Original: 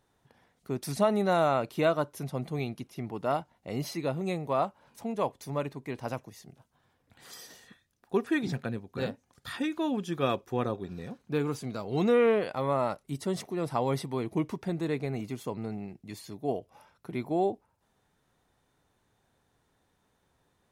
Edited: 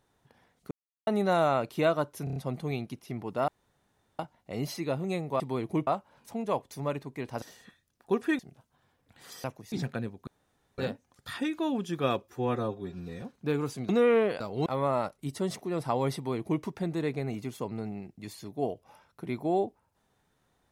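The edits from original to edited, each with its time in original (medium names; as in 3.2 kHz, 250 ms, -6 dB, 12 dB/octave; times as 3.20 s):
0.71–1.07 s: mute
2.24 s: stutter 0.03 s, 5 plays
3.36 s: insert room tone 0.71 s
6.12–6.40 s: swap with 7.45–8.42 s
8.97 s: insert room tone 0.51 s
10.42–11.08 s: stretch 1.5×
11.75–12.01 s: move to 12.52 s
14.02–14.49 s: copy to 4.57 s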